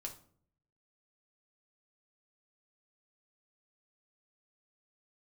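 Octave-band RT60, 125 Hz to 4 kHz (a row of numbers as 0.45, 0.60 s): 1.0, 0.75, 0.60, 0.50, 0.40, 0.35 s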